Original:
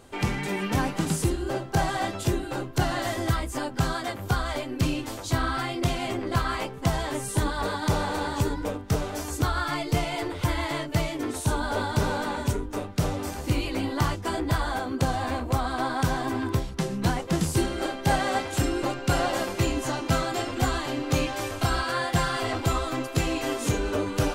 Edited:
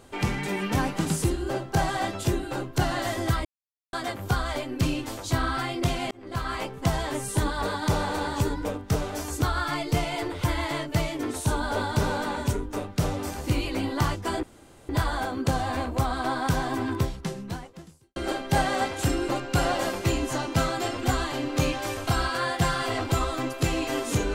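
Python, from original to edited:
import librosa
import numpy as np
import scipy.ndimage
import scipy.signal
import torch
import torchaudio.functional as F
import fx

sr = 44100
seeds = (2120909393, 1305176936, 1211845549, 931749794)

y = fx.edit(x, sr, fx.silence(start_s=3.45, length_s=0.48),
    fx.fade_in_span(start_s=6.11, length_s=0.74, curve='qsin'),
    fx.insert_room_tone(at_s=14.43, length_s=0.46),
    fx.fade_out_span(start_s=16.6, length_s=1.1, curve='qua'), tone=tone)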